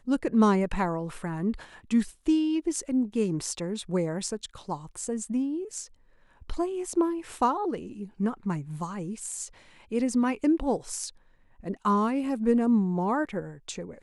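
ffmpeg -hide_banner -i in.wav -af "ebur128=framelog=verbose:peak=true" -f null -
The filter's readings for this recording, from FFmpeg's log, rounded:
Integrated loudness:
  I:         -28.4 LUFS
  Threshold: -38.8 LUFS
Loudness range:
  LRA:         5.1 LU
  Threshold: -49.5 LUFS
  LRA low:   -32.1 LUFS
  LRA high:  -26.9 LUFS
True peak:
  Peak:      -10.1 dBFS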